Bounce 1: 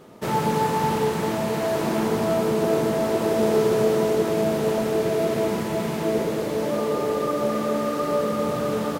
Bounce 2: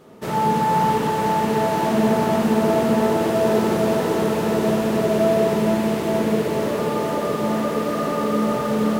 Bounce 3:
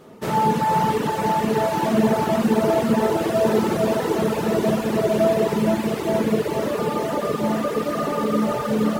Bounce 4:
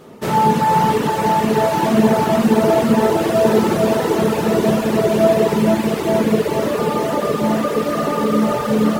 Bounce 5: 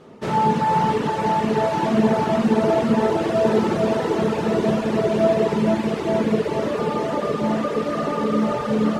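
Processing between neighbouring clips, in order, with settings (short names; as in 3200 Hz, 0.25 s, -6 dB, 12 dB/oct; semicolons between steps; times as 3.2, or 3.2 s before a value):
on a send at -1 dB: reverb, pre-delay 55 ms; on the sum: lo-fi delay 0.47 s, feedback 80%, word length 8-bit, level -5 dB; gain -1.5 dB
reverb removal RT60 1.1 s; gain +2 dB
de-hum 64.37 Hz, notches 34; gain +5 dB
air absorption 68 m; gain -4 dB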